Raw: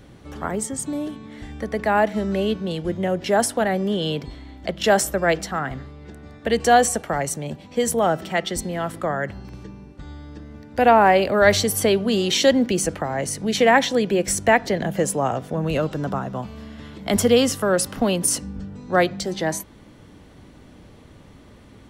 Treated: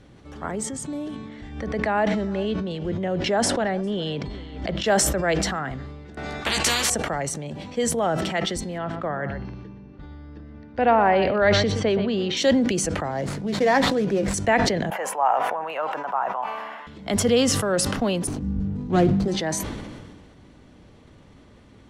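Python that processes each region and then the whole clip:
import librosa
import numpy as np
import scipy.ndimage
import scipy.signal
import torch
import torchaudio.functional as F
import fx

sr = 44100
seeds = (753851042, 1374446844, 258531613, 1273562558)

y = fx.chain(x, sr, fx.air_absorb(metres=58.0),
    fx.echo_single(ms=404, db=-21.5),
    fx.pre_swell(db_per_s=72.0), at=(1.29, 4.86))
y = fx.chain(y, sr, fx.doubler(ms=15.0, db=-3.5),
    fx.spectral_comp(ratio=10.0), at=(6.17, 6.9))
y = fx.chain(y, sr, fx.gaussian_blur(sigma=1.9),
    fx.echo_single(ms=122, db=-13.0), at=(8.78, 12.37))
y = fx.chain(y, sr, fx.median_filter(points=15),
    fx.doubler(ms=15.0, db=-10), at=(13.11, 14.34))
y = fx.chain(y, sr, fx.highpass_res(hz=870.0, q=3.5),
    fx.band_shelf(hz=5700.0, db=-13.5, octaves=1.7), at=(14.9, 16.87))
y = fx.chain(y, sr, fx.median_filter(points=25),
    fx.low_shelf(hz=450.0, db=11.5),
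    fx.notch(hz=550.0, q=6.2), at=(18.27, 19.28))
y = scipy.signal.sosfilt(scipy.signal.butter(2, 8500.0, 'lowpass', fs=sr, output='sos'), y)
y = fx.sustainer(y, sr, db_per_s=31.0)
y = y * librosa.db_to_amplitude(-4.0)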